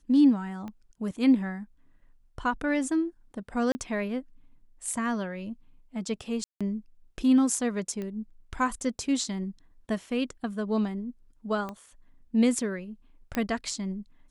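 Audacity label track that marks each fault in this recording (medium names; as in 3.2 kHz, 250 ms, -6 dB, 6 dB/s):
0.680000	0.680000	pop -27 dBFS
3.720000	3.750000	dropout 30 ms
6.440000	6.610000	dropout 166 ms
8.020000	8.020000	pop -24 dBFS
11.690000	11.690000	pop -23 dBFS
13.350000	13.350000	pop -15 dBFS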